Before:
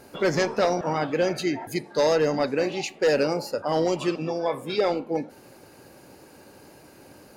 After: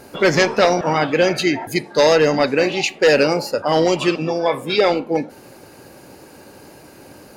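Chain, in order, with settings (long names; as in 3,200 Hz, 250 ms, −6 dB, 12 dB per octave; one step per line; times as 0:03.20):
dynamic equaliser 2,700 Hz, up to +6 dB, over −40 dBFS, Q 0.84
level +7 dB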